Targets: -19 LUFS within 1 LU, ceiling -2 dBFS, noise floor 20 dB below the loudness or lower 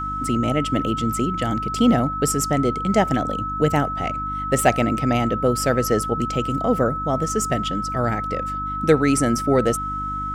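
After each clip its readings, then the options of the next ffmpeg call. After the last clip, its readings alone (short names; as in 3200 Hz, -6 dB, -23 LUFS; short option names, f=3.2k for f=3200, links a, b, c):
hum 50 Hz; harmonics up to 300 Hz; hum level -31 dBFS; steady tone 1300 Hz; tone level -25 dBFS; loudness -21.0 LUFS; peak -3.5 dBFS; loudness target -19.0 LUFS
-> -af "bandreject=f=50:t=h:w=4,bandreject=f=100:t=h:w=4,bandreject=f=150:t=h:w=4,bandreject=f=200:t=h:w=4,bandreject=f=250:t=h:w=4,bandreject=f=300:t=h:w=4"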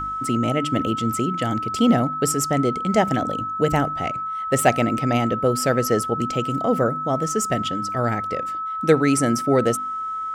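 hum none; steady tone 1300 Hz; tone level -25 dBFS
-> -af "bandreject=f=1.3k:w=30"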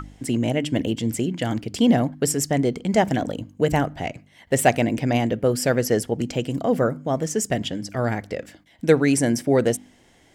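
steady tone none; loudness -22.5 LUFS; peak -3.5 dBFS; loudness target -19.0 LUFS
-> -af "volume=3.5dB,alimiter=limit=-2dB:level=0:latency=1"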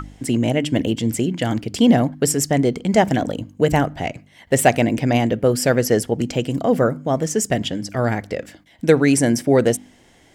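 loudness -19.0 LUFS; peak -2.0 dBFS; noise floor -52 dBFS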